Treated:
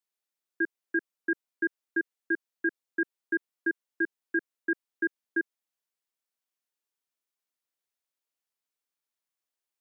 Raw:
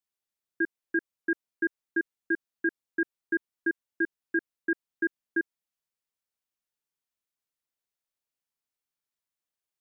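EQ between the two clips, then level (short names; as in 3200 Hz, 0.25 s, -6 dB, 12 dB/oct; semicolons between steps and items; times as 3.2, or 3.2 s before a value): HPF 250 Hz; 0.0 dB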